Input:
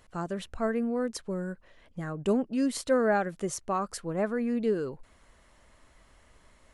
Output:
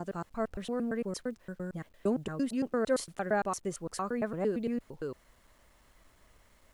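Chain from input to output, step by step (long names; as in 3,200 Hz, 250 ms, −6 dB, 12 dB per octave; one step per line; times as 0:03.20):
slices reordered back to front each 114 ms, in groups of 3
bit reduction 11 bits
level −3.5 dB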